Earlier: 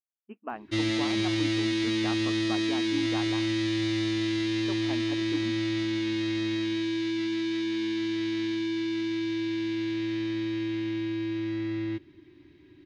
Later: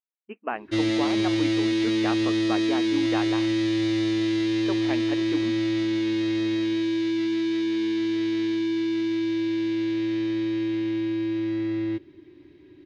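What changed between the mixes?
speech: add peaking EQ 2.3 kHz +12 dB 1.6 oct; master: add peaking EQ 480 Hz +8.5 dB 1.2 oct

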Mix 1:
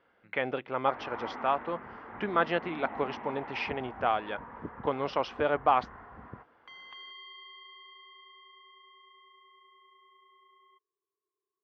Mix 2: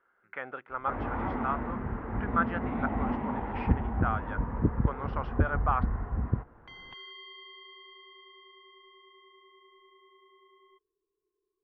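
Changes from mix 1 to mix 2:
speech: add band-pass filter 1.4 kHz, Q 3.5; second sound: add peaking EQ 1.2 kHz -12 dB 0.24 oct; master: remove high-pass 1.2 kHz 6 dB/octave

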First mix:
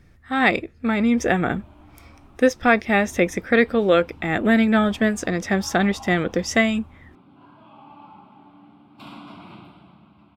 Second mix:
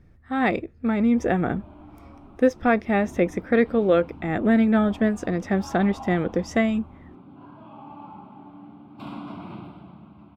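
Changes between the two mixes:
speech -6.5 dB; master: add tilt shelf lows +6 dB, about 1.5 kHz

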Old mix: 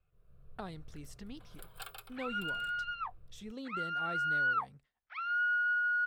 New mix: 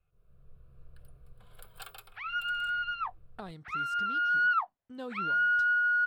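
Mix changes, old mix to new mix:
speech: entry +2.80 s; second sound +4.5 dB

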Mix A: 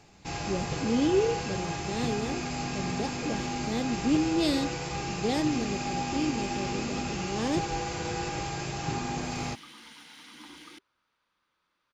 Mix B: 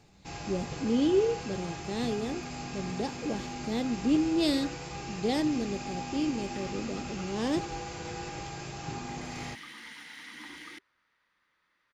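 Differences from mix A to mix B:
first sound -6.0 dB; second sound: add peaking EQ 1.9 kHz +12.5 dB 0.35 oct

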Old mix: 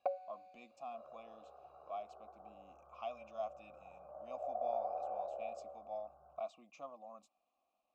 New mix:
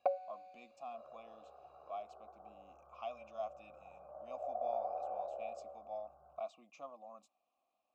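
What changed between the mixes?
speech: add bass shelf 160 Hz -5 dB; first sound +3.5 dB

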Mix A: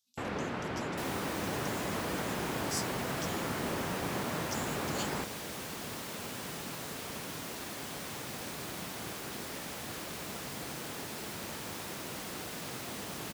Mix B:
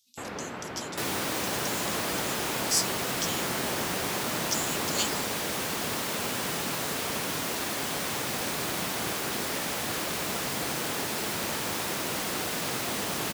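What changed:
speech +11.5 dB; second sound +10.5 dB; master: add bass shelf 230 Hz -5.5 dB

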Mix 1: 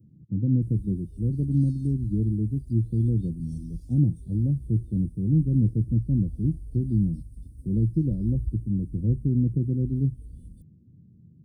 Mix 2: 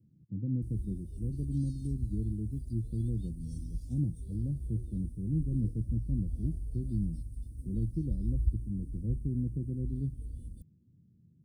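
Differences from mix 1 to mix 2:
speech -10.0 dB; background: send +8.5 dB

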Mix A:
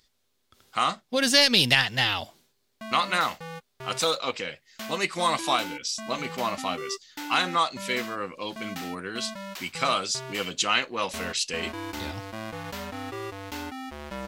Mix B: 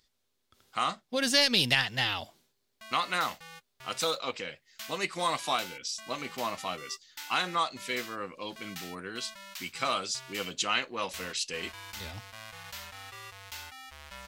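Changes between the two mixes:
speech -5.0 dB; background: add amplifier tone stack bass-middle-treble 10-0-10

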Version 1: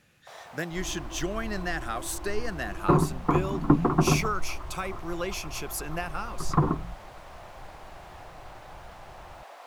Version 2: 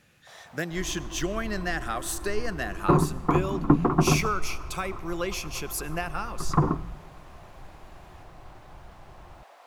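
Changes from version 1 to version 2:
first sound -5.5 dB; reverb: on, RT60 2.3 s

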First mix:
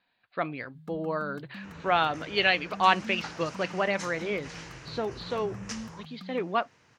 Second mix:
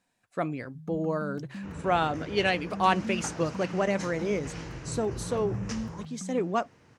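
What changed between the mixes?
speech: remove steep low-pass 4.6 kHz 96 dB/octave; second sound +3.5 dB; master: add tilt shelf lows +6 dB, about 690 Hz

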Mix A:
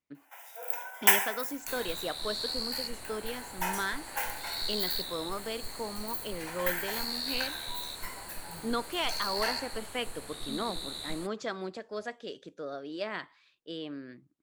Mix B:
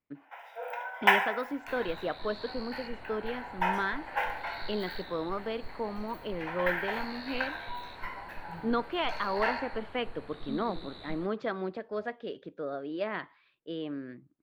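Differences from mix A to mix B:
speech +4.0 dB; first sound +7.0 dB; master: add distance through air 380 m

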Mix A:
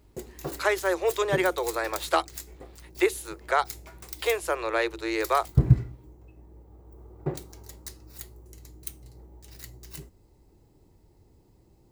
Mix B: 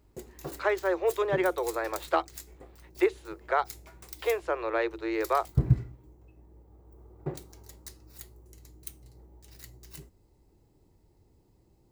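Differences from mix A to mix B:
speech: add tape spacing loss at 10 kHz 26 dB; background -4.5 dB

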